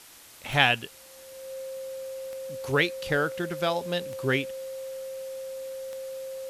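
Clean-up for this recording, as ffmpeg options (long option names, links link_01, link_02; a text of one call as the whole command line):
ffmpeg -i in.wav -af "adeclick=threshold=4,bandreject=frequency=530:width=30,afwtdn=0.0035" out.wav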